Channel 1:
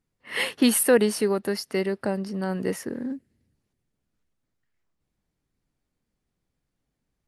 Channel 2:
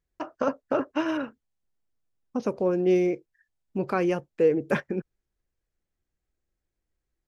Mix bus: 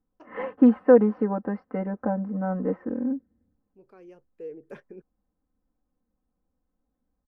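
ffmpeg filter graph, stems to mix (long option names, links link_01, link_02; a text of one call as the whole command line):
ffmpeg -i stem1.wav -i stem2.wav -filter_complex "[0:a]lowpass=frequency=1300:width=0.5412,lowpass=frequency=1300:width=1.3066,aecho=1:1:3.9:0.94,volume=-1.5dB,asplit=2[link_01][link_02];[1:a]equalizer=frequency=420:width_type=o:width=0.74:gain=8.5,volume=-20dB[link_03];[link_02]apad=whole_len=320642[link_04];[link_03][link_04]sidechaincompress=threshold=-45dB:ratio=8:attack=16:release=1210[link_05];[link_01][link_05]amix=inputs=2:normalize=0" out.wav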